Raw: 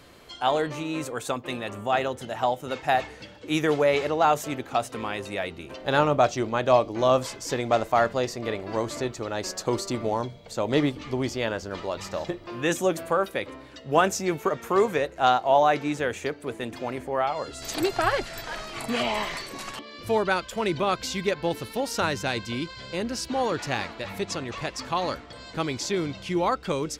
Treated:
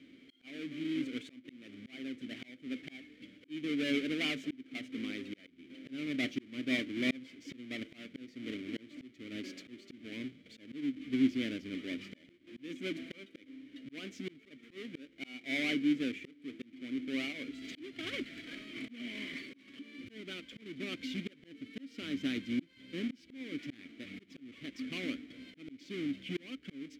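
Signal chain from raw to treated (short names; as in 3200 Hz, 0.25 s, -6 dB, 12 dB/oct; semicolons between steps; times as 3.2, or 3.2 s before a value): half-waves squared off; vowel filter i; auto swell 0.467 s; gain +1 dB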